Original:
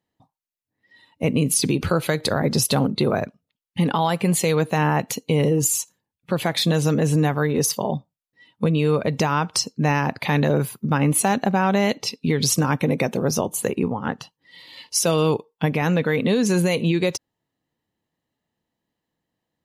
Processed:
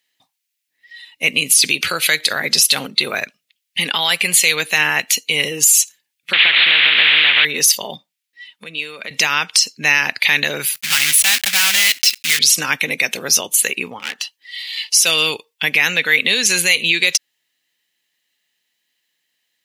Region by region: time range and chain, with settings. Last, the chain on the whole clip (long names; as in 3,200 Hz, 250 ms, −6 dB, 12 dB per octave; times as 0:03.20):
0:06.33–0:07.45: linear delta modulator 16 kbit/s, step −27.5 dBFS + every bin compressed towards the loudest bin 4 to 1
0:07.96–0:09.11: Chebyshev high-pass filter 180 Hz, order 3 + high-shelf EQ 3,700 Hz −4 dB + downward compressor, threshold −27 dBFS
0:10.74–0:12.39: one scale factor per block 3 bits + parametric band 390 Hz −13.5 dB 2 octaves
0:13.99–0:14.85: hard clipping −27 dBFS + parametric band 89 Hz −13 dB 1.7 octaves
whole clip: high-pass filter 1,100 Hz 6 dB per octave; high shelf with overshoot 1,500 Hz +12.5 dB, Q 1.5; boost into a limiter +4.5 dB; level −1 dB